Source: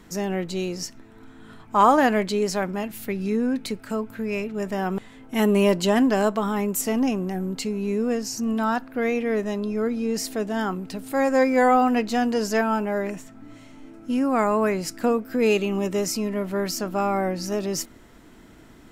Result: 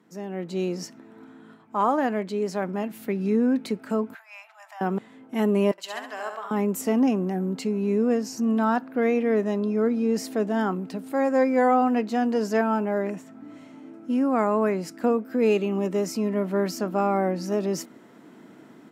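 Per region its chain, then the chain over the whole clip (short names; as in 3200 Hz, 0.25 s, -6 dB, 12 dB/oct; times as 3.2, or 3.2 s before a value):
4.14–4.81 compressor 5:1, threshold -30 dBFS + steep high-pass 700 Hz 72 dB/oct + short-mantissa float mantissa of 6-bit
5.71–6.51 HPF 1200 Hz + flutter echo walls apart 11.7 m, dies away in 0.68 s + three-band expander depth 70%
whole clip: AGC gain up to 11.5 dB; HPF 160 Hz 24 dB/oct; high shelf 2000 Hz -10 dB; gain -8.5 dB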